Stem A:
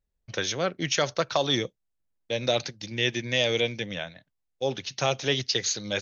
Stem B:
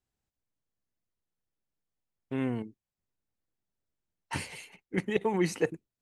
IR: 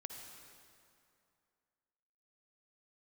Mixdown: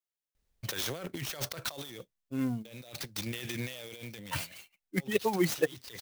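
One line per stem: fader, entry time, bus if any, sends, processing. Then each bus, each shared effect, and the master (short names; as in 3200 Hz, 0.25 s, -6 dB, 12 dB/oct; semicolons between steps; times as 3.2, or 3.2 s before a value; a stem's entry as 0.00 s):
-15.0 dB, 0.35 s, no send, negative-ratio compressor -35 dBFS, ratio -1; sine folder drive 8 dB, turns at -14.5 dBFS; auto duck -12 dB, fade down 0.70 s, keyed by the second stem
+2.0 dB, 0.00 s, no send, per-bin expansion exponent 2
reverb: off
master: high shelf 3400 Hz +8 dB; clock jitter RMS 0.028 ms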